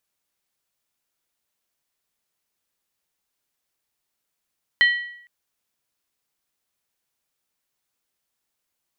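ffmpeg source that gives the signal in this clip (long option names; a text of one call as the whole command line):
ffmpeg -f lavfi -i "aevalsrc='0.282*pow(10,-3*t/0.69)*sin(2*PI*1930*t)+0.112*pow(10,-3*t/0.547)*sin(2*PI*3076.4*t)+0.0447*pow(10,-3*t/0.472)*sin(2*PI*4122.5*t)':duration=0.46:sample_rate=44100" out.wav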